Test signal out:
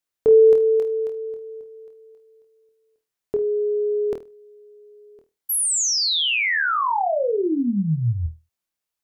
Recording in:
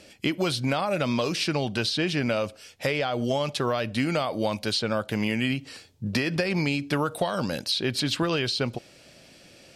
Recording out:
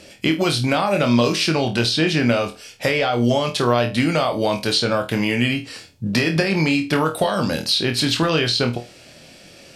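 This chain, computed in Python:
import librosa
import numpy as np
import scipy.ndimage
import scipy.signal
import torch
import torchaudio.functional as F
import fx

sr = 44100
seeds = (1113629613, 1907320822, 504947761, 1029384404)

y = fx.room_flutter(x, sr, wall_m=4.3, rt60_s=0.25)
y = y * 10.0 ** (6.0 / 20.0)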